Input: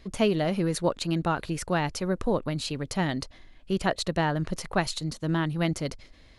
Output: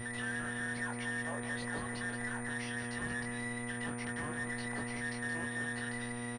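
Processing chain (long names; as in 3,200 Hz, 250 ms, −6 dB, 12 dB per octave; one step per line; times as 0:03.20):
frequency inversion band by band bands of 2,000 Hz
treble cut that deepens with the level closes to 1,600 Hz, closed at −21 dBFS
parametric band 1,300 Hz −14 dB 0.5 octaves
downward compressor, threshold −40 dBFS, peak gain reduction 14 dB
brickwall limiter −39 dBFS, peak gain reduction 10.5 dB
hum with harmonics 120 Hz, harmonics 22, −48 dBFS −7 dB per octave
asymmetric clip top −42.5 dBFS
double-tracking delay 21 ms −4.5 dB
single-tap delay 175 ms −8.5 dB
switching amplifier with a slow clock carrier 9,100 Hz
level +6 dB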